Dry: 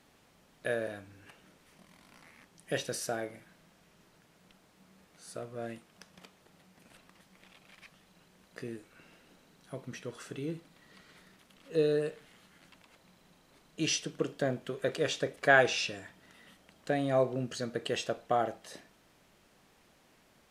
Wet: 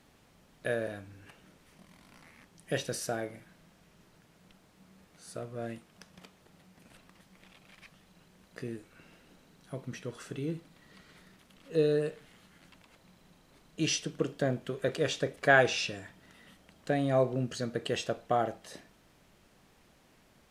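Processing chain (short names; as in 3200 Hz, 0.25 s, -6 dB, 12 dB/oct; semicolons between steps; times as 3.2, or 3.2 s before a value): low shelf 180 Hz +6.5 dB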